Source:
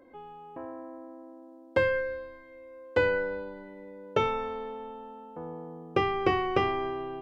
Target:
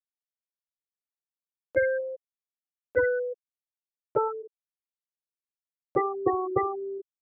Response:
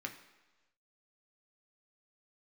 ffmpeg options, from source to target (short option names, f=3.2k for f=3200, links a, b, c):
-af "afftfilt=real='re*gte(hypot(re,im),0.2)':imag='im*gte(hypot(re,im),0.2)':win_size=1024:overlap=0.75,acompressor=mode=upward:threshold=-32dB:ratio=2.5,volume=1.5dB"